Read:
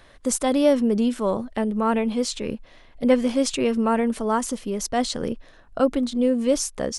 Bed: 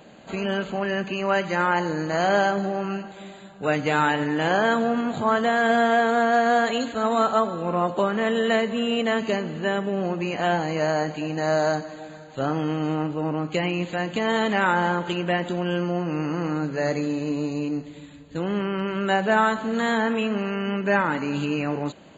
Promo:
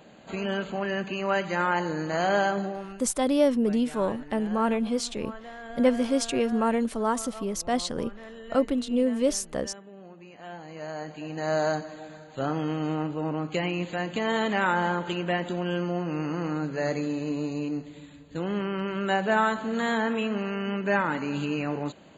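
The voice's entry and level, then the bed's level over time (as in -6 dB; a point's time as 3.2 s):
2.75 s, -3.5 dB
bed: 2.61 s -3.5 dB
3.19 s -21 dB
10.35 s -21 dB
11.58 s -3.5 dB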